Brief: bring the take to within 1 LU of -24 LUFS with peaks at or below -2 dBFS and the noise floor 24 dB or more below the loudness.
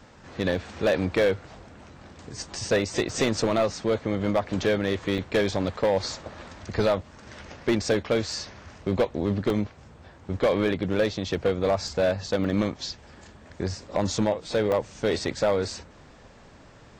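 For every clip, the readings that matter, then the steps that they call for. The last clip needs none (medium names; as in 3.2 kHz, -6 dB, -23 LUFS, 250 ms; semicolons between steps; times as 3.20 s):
clipped samples 1.1%; clipping level -16.0 dBFS; dropouts 7; longest dropout 1.6 ms; loudness -26.5 LUFS; peak level -16.0 dBFS; loudness target -24.0 LUFS
-> clip repair -16 dBFS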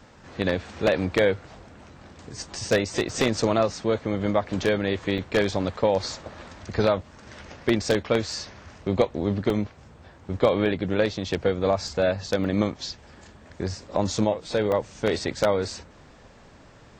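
clipped samples 0.0%; dropouts 7; longest dropout 1.6 ms
-> interpolate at 3.09/5.18/8.32/9.50/11.88/12.44/14.72 s, 1.6 ms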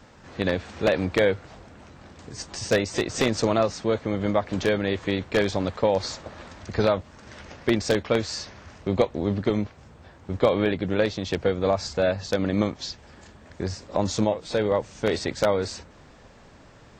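dropouts 0; loudness -25.5 LUFS; peak level -7.0 dBFS; loudness target -24.0 LUFS
-> trim +1.5 dB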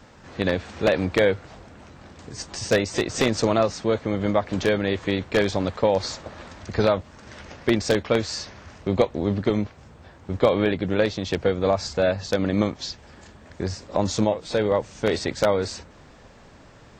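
loudness -24.0 LUFS; peak level -5.5 dBFS; noise floor -49 dBFS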